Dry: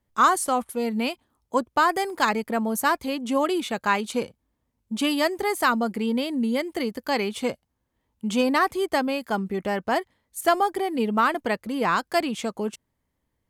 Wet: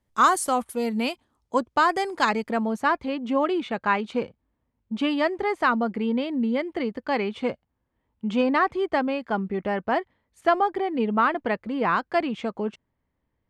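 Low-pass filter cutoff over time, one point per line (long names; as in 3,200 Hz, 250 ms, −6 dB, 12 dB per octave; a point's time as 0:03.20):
0:00.90 12,000 Hz
0:01.60 6,700 Hz
0:02.47 6,700 Hz
0:02.88 2,700 Hz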